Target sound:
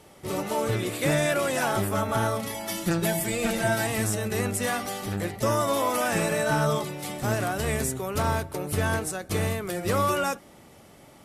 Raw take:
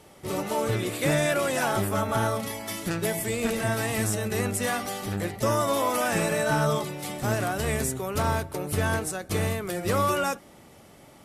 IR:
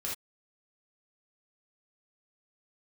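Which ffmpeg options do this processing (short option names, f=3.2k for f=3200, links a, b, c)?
-filter_complex "[0:a]asettb=1/sr,asplit=3[a][b][c];[a]atrim=end=2.544[d];[b]atrim=start=2.54:end=3.87,asetpts=PTS-STARTPTS,afade=t=in:d=0.004:c=qsin,afade=t=out:st=1.326:d=0.004:c=qsin,aecho=1:1:5.8:0.78,atrim=end_sample=58653[e];[c]atrim=start=3.866[f];[d][e]acrossfade=d=0.004:c1=hsin:c2=qsin[g];[g][f]acrossfade=d=0.004:c1=qsin:c2=hsin"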